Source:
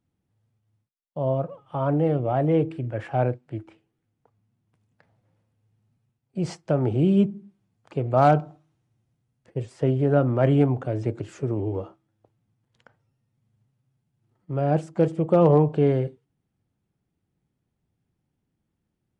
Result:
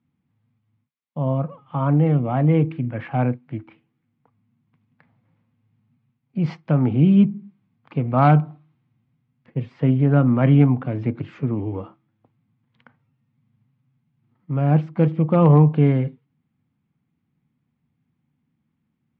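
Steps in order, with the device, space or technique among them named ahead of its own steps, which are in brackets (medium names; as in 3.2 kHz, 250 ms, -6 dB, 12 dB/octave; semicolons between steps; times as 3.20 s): guitar cabinet (cabinet simulation 78–3800 Hz, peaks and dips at 150 Hz +7 dB, 240 Hz +10 dB, 390 Hz -7 dB, 610 Hz -6 dB, 1.1 kHz +5 dB, 2.2 kHz +6 dB); trim +1.5 dB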